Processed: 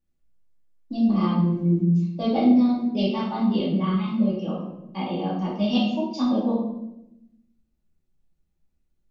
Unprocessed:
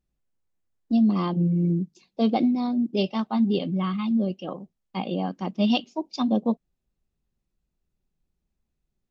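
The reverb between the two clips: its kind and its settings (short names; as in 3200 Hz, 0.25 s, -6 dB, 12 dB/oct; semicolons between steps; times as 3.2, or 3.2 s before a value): shoebox room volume 260 m³, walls mixed, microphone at 2.4 m; gain -6.5 dB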